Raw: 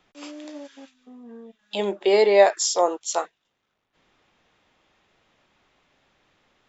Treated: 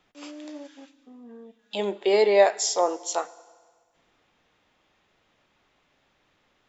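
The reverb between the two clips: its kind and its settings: FDN reverb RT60 1.6 s, low-frequency decay 0.9×, high-frequency decay 0.95×, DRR 17 dB; gain -2.5 dB

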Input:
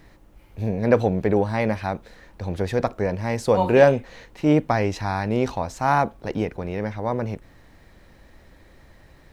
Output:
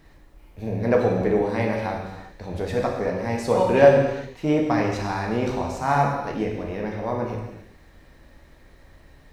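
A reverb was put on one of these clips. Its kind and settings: non-linear reverb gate 0.41 s falling, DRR -1 dB; gain -4 dB

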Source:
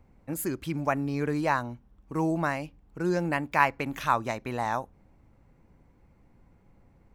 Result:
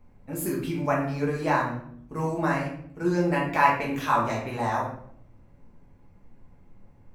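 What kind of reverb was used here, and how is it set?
shoebox room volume 110 m³, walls mixed, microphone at 1.4 m; gain -3.5 dB

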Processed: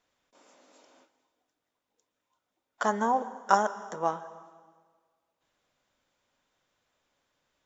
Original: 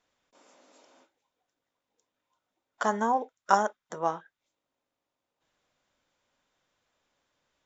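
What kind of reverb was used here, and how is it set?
plate-style reverb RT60 1.6 s, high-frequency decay 0.95×, pre-delay 0.11 s, DRR 15 dB

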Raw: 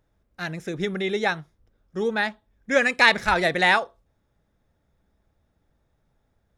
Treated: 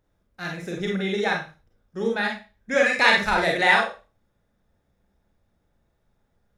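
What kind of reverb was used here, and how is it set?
Schroeder reverb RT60 0.32 s, combs from 31 ms, DRR -0.5 dB; gain -3 dB

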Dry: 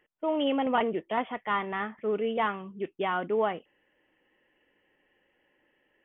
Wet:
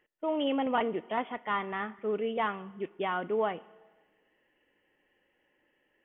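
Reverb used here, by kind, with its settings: Schroeder reverb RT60 1.4 s, combs from 26 ms, DRR 20 dB; gain -2.5 dB

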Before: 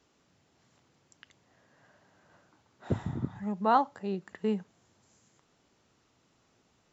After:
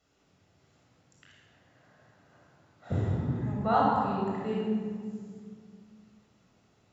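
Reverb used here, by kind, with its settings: shoebox room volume 3600 m³, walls mixed, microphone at 6.7 m; gain -7.5 dB

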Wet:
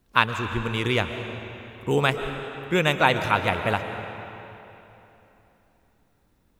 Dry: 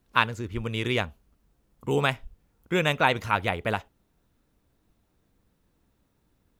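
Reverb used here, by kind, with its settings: digital reverb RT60 3.3 s, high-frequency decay 0.8×, pre-delay 90 ms, DRR 7.5 dB; gain +2.5 dB

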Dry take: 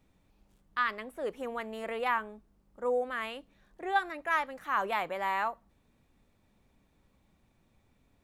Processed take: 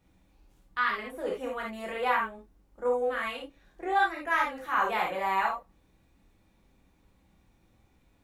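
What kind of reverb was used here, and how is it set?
non-linear reverb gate 0.1 s flat, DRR -3 dB; gain -1.5 dB

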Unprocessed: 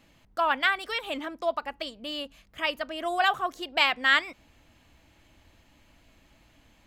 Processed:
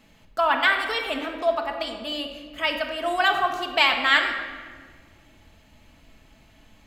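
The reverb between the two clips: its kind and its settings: shoebox room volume 2000 m³, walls mixed, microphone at 1.5 m; gain +2.5 dB

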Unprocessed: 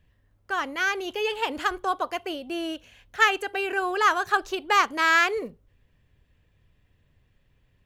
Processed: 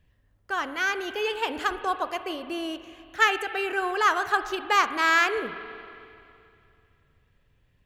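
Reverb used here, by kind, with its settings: spring tank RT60 2.6 s, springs 43/54 ms, chirp 35 ms, DRR 11 dB; gain -1 dB

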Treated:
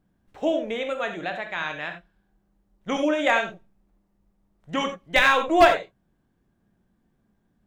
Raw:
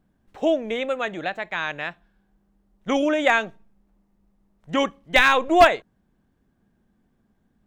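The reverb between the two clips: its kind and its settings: non-linear reverb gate 0.11 s flat, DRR 5 dB; gain -3 dB

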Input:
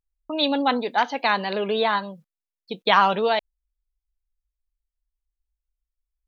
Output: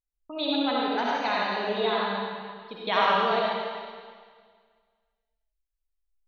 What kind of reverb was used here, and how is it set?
digital reverb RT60 1.8 s, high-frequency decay 1×, pre-delay 25 ms, DRR -5.5 dB; gain -10 dB

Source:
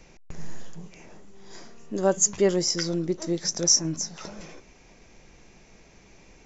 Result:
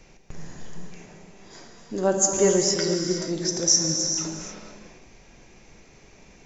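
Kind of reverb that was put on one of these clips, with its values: non-linear reverb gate 0.5 s flat, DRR 1.5 dB

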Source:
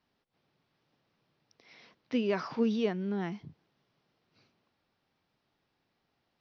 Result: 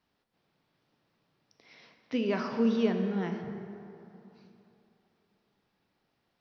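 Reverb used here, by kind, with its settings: plate-style reverb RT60 3 s, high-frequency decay 0.5×, DRR 4.5 dB

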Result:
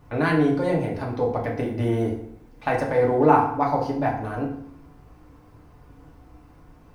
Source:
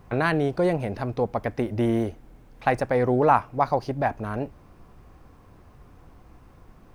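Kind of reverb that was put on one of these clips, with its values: FDN reverb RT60 0.67 s, low-frequency decay 1.2×, high-frequency decay 0.75×, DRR -2.5 dB; gain -4 dB

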